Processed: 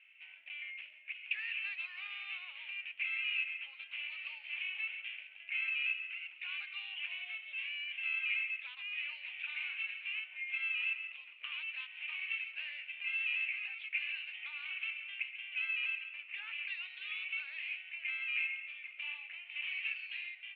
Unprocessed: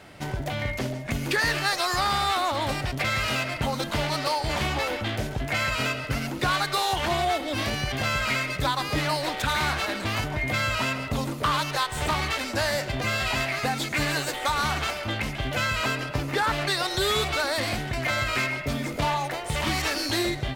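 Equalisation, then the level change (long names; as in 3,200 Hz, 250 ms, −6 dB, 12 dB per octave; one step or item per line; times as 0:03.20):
flat-topped band-pass 2,600 Hz, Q 4.5
high-frequency loss of the air 490 metres
+5.0 dB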